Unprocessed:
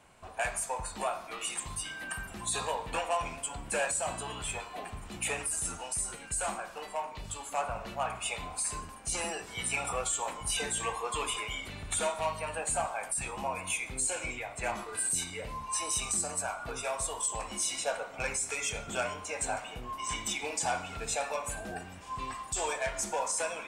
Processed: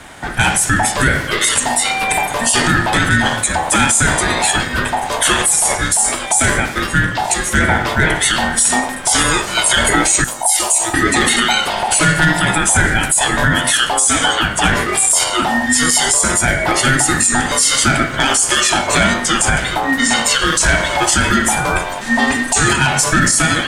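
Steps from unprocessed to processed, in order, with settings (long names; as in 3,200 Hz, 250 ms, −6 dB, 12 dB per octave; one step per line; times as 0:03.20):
0:10.24–0:10.94: drawn EQ curve 150 Hz 0 dB, 1,100 Hz −21 dB, 14,000 Hz +9 dB
ring modulation 800 Hz
boost into a limiter +27.5 dB
level −1 dB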